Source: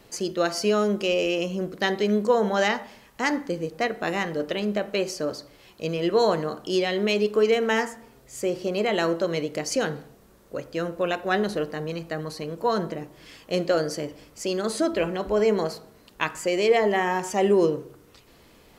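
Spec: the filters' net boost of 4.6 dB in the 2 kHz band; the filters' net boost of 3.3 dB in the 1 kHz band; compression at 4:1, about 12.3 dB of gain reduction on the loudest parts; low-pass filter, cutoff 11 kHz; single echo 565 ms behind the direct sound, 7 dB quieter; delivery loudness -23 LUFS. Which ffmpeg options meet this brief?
-af "lowpass=11000,equalizer=f=1000:t=o:g=3.5,equalizer=f=2000:t=o:g=4.5,acompressor=threshold=0.0316:ratio=4,aecho=1:1:565:0.447,volume=2.99"

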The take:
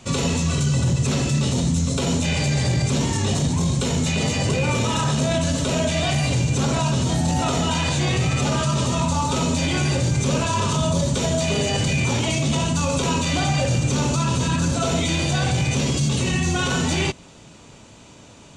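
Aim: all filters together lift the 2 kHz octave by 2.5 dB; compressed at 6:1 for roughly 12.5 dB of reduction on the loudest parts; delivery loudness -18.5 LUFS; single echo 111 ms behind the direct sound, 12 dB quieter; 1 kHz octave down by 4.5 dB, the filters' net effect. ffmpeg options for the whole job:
-af "equalizer=f=1000:t=o:g=-7,equalizer=f=2000:t=o:g=5,acompressor=threshold=0.0282:ratio=6,aecho=1:1:111:0.251,volume=5.01"

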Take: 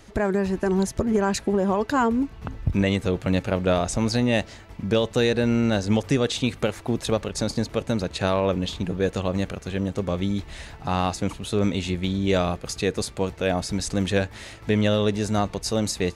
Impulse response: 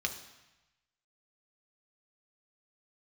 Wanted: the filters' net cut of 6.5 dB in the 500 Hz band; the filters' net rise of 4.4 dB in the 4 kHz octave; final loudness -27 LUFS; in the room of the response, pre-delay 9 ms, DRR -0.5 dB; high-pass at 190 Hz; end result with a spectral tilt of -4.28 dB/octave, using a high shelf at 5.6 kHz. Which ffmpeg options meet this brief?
-filter_complex "[0:a]highpass=190,equalizer=f=500:t=o:g=-8,equalizer=f=4000:t=o:g=7,highshelf=f=5600:g=-4.5,asplit=2[s0][s1];[1:a]atrim=start_sample=2205,adelay=9[s2];[s1][s2]afir=irnorm=-1:irlink=0,volume=0.668[s3];[s0][s3]amix=inputs=2:normalize=0,volume=0.708"

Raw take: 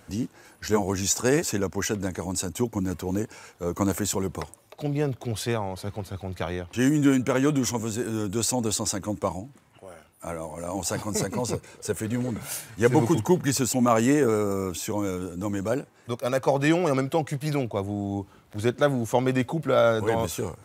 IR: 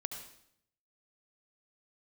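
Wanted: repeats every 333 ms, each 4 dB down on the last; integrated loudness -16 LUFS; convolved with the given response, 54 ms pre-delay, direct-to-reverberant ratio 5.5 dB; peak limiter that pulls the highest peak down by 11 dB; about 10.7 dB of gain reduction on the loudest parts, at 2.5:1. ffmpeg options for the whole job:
-filter_complex "[0:a]acompressor=threshold=0.0251:ratio=2.5,alimiter=level_in=1.33:limit=0.0631:level=0:latency=1,volume=0.75,aecho=1:1:333|666|999|1332|1665|1998|2331|2664|2997:0.631|0.398|0.25|0.158|0.0994|0.0626|0.0394|0.0249|0.0157,asplit=2[s0][s1];[1:a]atrim=start_sample=2205,adelay=54[s2];[s1][s2]afir=irnorm=-1:irlink=0,volume=0.562[s3];[s0][s3]amix=inputs=2:normalize=0,volume=7.94"

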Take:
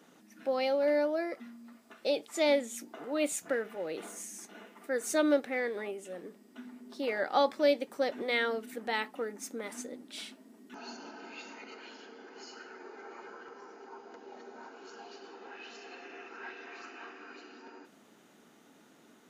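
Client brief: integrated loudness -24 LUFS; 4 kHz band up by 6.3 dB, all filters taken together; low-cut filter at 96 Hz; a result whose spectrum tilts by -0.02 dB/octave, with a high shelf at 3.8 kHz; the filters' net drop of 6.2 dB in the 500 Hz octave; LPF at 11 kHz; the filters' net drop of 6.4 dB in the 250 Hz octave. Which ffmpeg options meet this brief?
-af "highpass=96,lowpass=11000,equalizer=f=250:t=o:g=-5.5,equalizer=f=500:t=o:g=-6.5,highshelf=f=3800:g=4.5,equalizer=f=4000:t=o:g=5,volume=3.76"

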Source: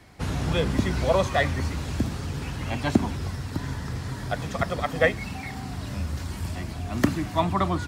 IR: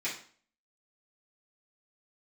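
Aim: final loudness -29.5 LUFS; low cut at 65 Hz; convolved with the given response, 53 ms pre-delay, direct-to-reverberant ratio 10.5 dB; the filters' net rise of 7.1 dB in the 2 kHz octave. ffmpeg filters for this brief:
-filter_complex "[0:a]highpass=65,equalizer=f=2000:t=o:g=8,asplit=2[s0][s1];[1:a]atrim=start_sample=2205,adelay=53[s2];[s1][s2]afir=irnorm=-1:irlink=0,volume=0.158[s3];[s0][s3]amix=inputs=2:normalize=0,volume=0.631"

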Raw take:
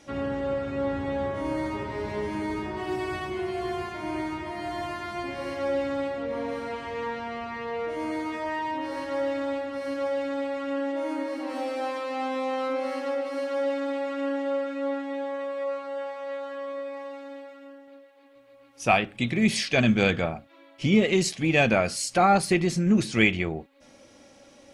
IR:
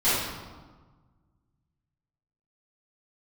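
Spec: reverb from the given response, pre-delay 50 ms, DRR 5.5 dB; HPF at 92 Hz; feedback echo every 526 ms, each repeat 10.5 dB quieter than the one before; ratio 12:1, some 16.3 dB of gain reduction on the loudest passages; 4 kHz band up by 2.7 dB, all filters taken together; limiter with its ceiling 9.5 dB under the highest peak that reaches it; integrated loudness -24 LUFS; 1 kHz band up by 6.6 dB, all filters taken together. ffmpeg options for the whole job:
-filter_complex "[0:a]highpass=92,equalizer=f=1000:t=o:g=9,equalizer=f=4000:t=o:g=3,acompressor=threshold=0.0447:ratio=12,alimiter=limit=0.0668:level=0:latency=1,aecho=1:1:526|1052|1578:0.299|0.0896|0.0269,asplit=2[s0][s1];[1:a]atrim=start_sample=2205,adelay=50[s2];[s1][s2]afir=irnorm=-1:irlink=0,volume=0.0891[s3];[s0][s3]amix=inputs=2:normalize=0,volume=2.24"

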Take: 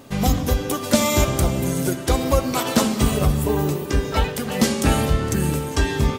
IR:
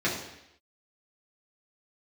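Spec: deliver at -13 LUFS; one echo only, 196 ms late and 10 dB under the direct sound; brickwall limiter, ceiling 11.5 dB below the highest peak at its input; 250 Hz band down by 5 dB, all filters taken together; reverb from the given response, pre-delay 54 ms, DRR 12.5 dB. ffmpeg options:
-filter_complex "[0:a]equalizer=f=250:t=o:g=-6.5,alimiter=limit=0.158:level=0:latency=1,aecho=1:1:196:0.316,asplit=2[s0][s1];[1:a]atrim=start_sample=2205,adelay=54[s2];[s1][s2]afir=irnorm=-1:irlink=0,volume=0.0596[s3];[s0][s3]amix=inputs=2:normalize=0,volume=4.22"

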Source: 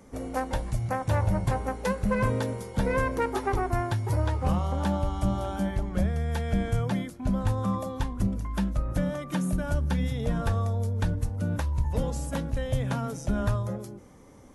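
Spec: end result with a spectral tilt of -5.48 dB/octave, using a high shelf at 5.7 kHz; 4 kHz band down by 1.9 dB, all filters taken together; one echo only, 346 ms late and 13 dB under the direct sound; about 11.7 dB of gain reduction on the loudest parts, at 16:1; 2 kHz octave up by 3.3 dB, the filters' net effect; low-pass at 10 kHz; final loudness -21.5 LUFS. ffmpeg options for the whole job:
-af "lowpass=10000,equalizer=f=2000:t=o:g=5,equalizer=f=4000:t=o:g=-6.5,highshelf=f=5700:g=6,acompressor=threshold=0.0251:ratio=16,aecho=1:1:346:0.224,volume=6.31"

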